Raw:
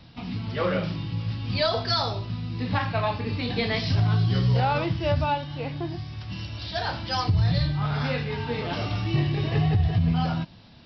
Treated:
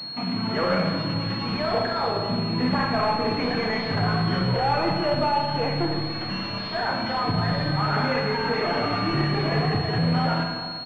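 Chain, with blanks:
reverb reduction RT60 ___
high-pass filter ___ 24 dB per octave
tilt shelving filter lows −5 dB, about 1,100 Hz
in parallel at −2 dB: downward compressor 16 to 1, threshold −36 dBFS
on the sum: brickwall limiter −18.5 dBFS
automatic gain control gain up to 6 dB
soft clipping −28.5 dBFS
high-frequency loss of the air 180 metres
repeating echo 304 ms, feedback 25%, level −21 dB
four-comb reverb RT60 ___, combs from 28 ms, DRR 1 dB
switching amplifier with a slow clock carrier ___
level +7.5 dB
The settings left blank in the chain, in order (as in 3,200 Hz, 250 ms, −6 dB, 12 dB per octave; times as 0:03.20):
1.1 s, 160 Hz, 1.8 s, 4,300 Hz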